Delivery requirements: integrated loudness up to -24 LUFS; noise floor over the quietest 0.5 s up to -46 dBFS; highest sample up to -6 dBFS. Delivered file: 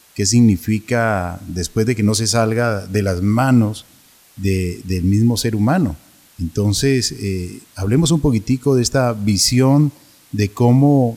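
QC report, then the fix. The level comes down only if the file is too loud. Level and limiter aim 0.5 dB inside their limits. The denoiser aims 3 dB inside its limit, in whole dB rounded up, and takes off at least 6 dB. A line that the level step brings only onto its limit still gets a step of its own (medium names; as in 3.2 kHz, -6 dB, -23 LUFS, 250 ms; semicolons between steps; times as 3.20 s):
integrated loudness -17.0 LUFS: fail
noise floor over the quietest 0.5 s -49 dBFS: pass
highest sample -4.5 dBFS: fail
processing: trim -7.5 dB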